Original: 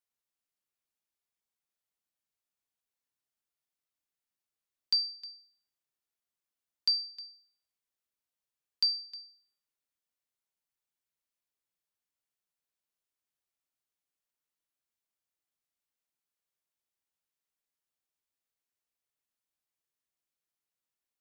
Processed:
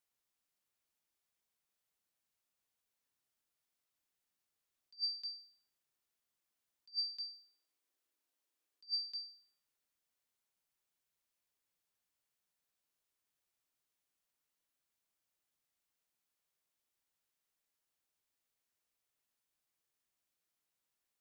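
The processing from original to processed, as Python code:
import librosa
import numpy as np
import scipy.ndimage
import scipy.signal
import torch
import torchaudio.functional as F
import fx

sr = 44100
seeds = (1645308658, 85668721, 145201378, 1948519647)

y = fx.low_shelf_res(x, sr, hz=230.0, db=-8.0, q=3.0, at=(7.28, 9.21))
y = fx.attack_slew(y, sr, db_per_s=440.0)
y = F.gain(torch.from_numpy(y), 3.0).numpy()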